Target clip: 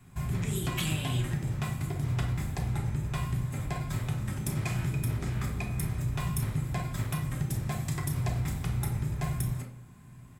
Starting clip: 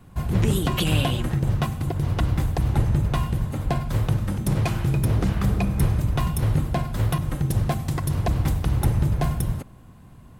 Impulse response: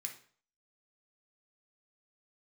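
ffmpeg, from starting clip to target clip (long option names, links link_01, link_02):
-filter_complex "[0:a]acompressor=threshold=-22dB:ratio=6,asplit=2[link_01][link_02];[link_02]adelay=33,volume=-12dB[link_03];[link_01][link_03]amix=inputs=2:normalize=0[link_04];[1:a]atrim=start_sample=2205[link_05];[link_04][link_05]afir=irnorm=-1:irlink=0"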